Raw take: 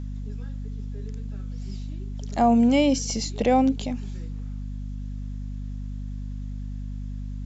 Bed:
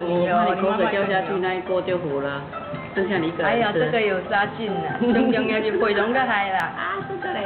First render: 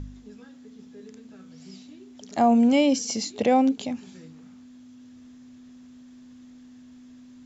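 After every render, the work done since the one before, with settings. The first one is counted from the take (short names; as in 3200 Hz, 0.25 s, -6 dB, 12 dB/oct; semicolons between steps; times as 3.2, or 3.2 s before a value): de-hum 50 Hz, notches 4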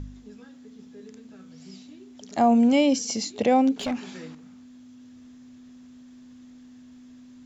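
3.76–4.35 overdrive pedal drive 20 dB, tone 2400 Hz, clips at -19 dBFS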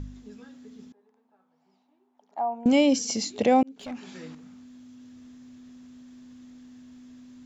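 0.92–2.66 band-pass 860 Hz, Q 5.1; 3.63–4.36 fade in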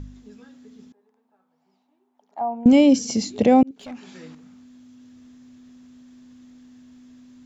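2.41–3.71 low shelf 350 Hz +11.5 dB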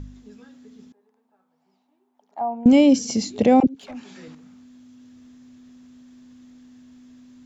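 3.6–4.28 dispersion lows, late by 43 ms, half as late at 540 Hz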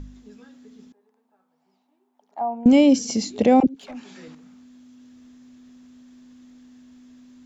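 bell 110 Hz -6.5 dB 0.83 oct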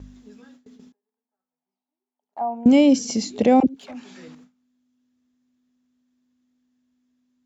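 gate with hold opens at -39 dBFS; HPF 56 Hz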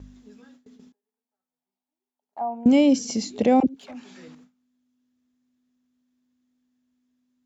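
gain -2.5 dB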